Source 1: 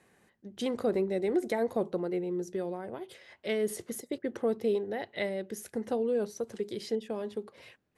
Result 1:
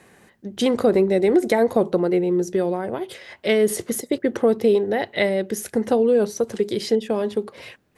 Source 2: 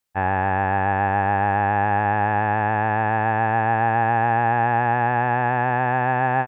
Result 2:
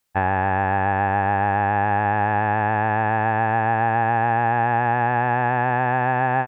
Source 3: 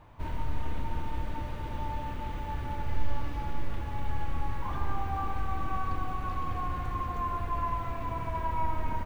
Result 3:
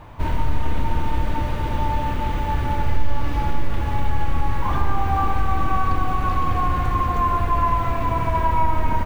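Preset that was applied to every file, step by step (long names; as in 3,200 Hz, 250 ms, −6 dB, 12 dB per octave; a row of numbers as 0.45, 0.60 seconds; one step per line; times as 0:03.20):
downward compressor 2 to 1, threshold −26 dBFS
normalise the peak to −6 dBFS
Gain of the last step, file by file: +13.0, +6.0, +12.5 decibels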